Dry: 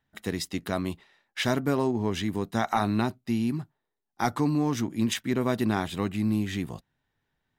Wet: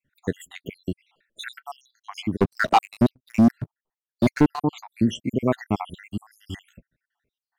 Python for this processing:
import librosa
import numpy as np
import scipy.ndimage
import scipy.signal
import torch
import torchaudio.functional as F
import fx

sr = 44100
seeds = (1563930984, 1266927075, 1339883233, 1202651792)

y = fx.spec_dropout(x, sr, seeds[0], share_pct=76)
y = fx.high_shelf(y, sr, hz=2900.0, db=-9.5)
y = fx.leveller(y, sr, passes=3, at=(2.37, 4.62))
y = F.gain(torch.from_numpy(y), 6.5).numpy()